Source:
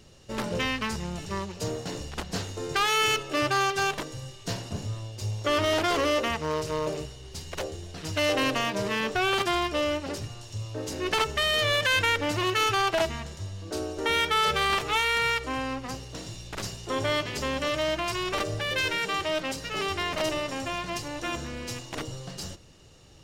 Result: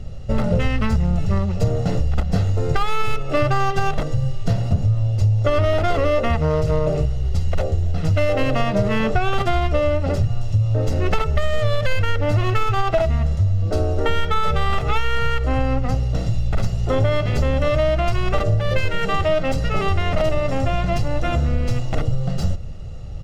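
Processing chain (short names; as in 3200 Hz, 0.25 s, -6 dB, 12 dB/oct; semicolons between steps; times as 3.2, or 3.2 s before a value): tracing distortion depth 0.045 ms; tilt -3.5 dB/oct; comb 1.5 ms, depth 57%; compressor, threshold -22 dBFS, peak gain reduction 10.5 dB; gain +8 dB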